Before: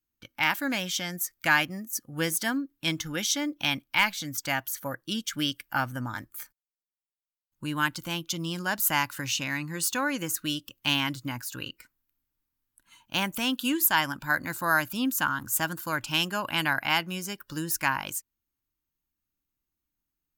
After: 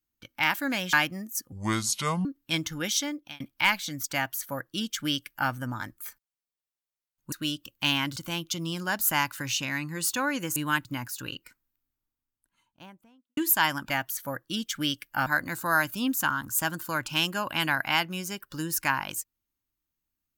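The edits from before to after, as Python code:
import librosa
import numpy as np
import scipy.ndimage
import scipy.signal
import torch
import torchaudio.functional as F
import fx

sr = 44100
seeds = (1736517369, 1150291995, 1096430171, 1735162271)

y = fx.studio_fade_out(x, sr, start_s=11.69, length_s=2.02)
y = fx.edit(y, sr, fx.cut(start_s=0.93, length_s=0.58),
    fx.speed_span(start_s=2.1, length_s=0.49, speed=0.67),
    fx.fade_out_span(start_s=3.31, length_s=0.43),
    fx.duplicate(start_s=4.48, length_s=1.36, to_s=14.24),
    fx.swap(start_s=7.66, length_s=0.29, other_s=10.35, other_length_s=0.84), tone=tone)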